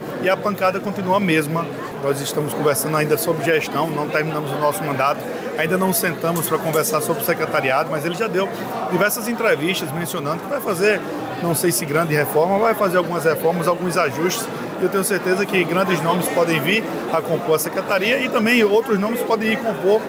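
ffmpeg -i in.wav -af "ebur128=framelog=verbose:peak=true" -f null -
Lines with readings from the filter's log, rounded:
Integrated loudness:
  I:         -19.5 LUFS
  Threshold: -29.5 LUFS
Loudness range:
  LRA:         2.2 LU
  Threshold: -39.6 LUFS
  LRA low:   -20.5 LUFS
  LRA high:  -18.4 LUFS
True peak:
  Peak:       -3.8 dBFS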